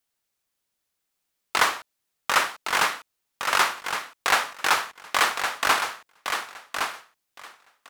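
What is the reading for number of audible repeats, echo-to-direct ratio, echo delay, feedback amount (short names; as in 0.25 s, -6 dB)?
2, -6.5 dB, 1.114 s, 15%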